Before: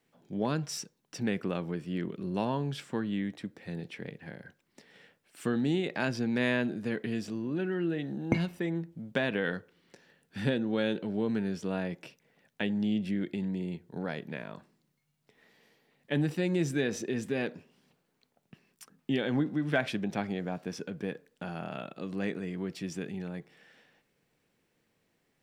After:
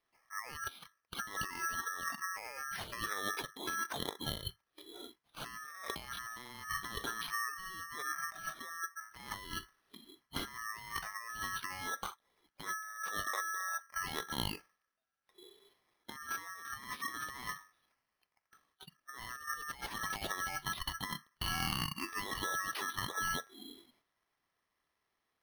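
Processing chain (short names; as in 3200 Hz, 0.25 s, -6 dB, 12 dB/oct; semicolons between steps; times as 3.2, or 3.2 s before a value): spectral noise reduction 19 dB; low shelf 280 Hz -7.5 dB; notches 50/100/150/200/250/300/350 Hz; negative-ratio compressor -47 dBFS, ratio -1; ring modulator 1500 Hz; careless resampling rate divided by 6×, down filtered, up hold; gain +8.5 dB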